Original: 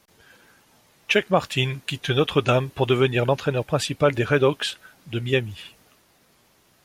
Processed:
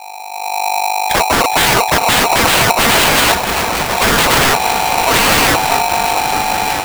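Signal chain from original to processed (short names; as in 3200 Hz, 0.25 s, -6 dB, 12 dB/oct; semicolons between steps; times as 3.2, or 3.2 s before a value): bin magnitudes rounded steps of 15 dB; EQ curve 130 Hz 0 dB, 350 Hz -12 dB, 660 Hz -30 dB; buzz 50 Hz, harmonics 11, -53 dBFS -8 dB/oct; AGC gain up to 15.5 dB; resonant low shelf 150 Hz +10.5 dB, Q 3; small resonant body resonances 290/750/2500 Hz, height 13 dB, ringing for 20 ms; wavefolder -15 dBFS; 3.32–3.98 metallic resonator 76 Hz, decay 0.2 s, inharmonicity 0.008; on a send: repeats that get brighter 0.624 s, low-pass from 400 Hz, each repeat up 2 oct, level -6 dB; on the sum: careless resampling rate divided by 8×, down none, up hold; polarity switched at an audio rate 810 Hz; gain +8 dB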